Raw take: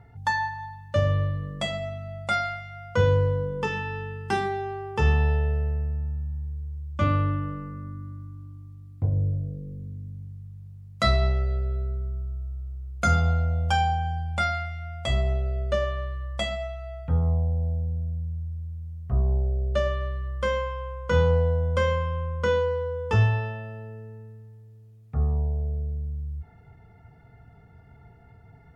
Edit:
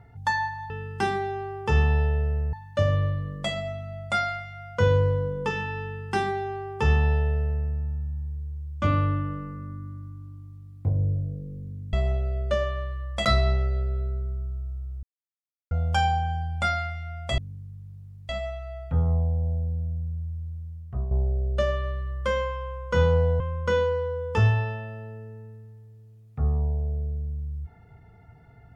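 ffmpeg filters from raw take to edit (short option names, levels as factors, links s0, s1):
-filter_complex "[0:a]asplit=11[s0][s1][s2][s3][s4][s5][s6][s7][s8][s9][s10];[s0]atrim=end=0.702[s11];[s1]atrim=start=3.998:end=5.832[s12];[s2]atrim=start=0.698:end=10.102[s13];[s3]atrim=start=15.138:end=16.462[s14];[s4]atrim=start=11.008:end=12.79,asetpts=PTS-STARTPTS,afade=t=out:st=1.778:d=0.004:c=hsin[s15];[s5]atrim=start=12.79:end=13.47,asetpts=PTS-STARTPTS,volume=0[s16];[s6]atrim=start=13.47:end=15.142,asetpts=PTS-STARTPTS,afade=t=in:d=0.004:c=hsin[s17];[s7]atrim=start=10.098:end=11.012[s18];[s8]atrim=start=16.458:end=19.28,asetpts=PTS-STARTPTS,afade=t=out:st=2.152:d=0.67:c=qsin:silence=0.334965[s19];[s9]atrim=start=19.28:end=21.572,asetpts=PTS-STARTPTS,afade=t=in:d=0.004:c=hsin:silence=0.334965[s20];[s10]atrim=start=22.158[s21];[s11][s12]acrossfade=d=0.004:c1=hsin:c2=hsin[s22];[s22][s13]acrossfade=d=0.004:c1=hsin:c2=hsin[s23];[s23][s14]acrossfade=d=0.004:c1=hsin:c2=hsin[s24];[s15][s16][s17]concat=n=3:v=0:a=1[s25];[s24][s25]acrossfade=d=0.004:c1=hsin:c2=hsin[s26];[s26][s18]acrossfade=d=0.004:c1=hsin:c2=hsin[s27];[s19][s20]concat=n=2:v=0:a=1[s28];[s27][s28]acrossfade=d=0.004:c1=hsin:c2=hsin[s29];[s29][s21]acrossfade=d=0.004:c1=hsin:c2=hsin"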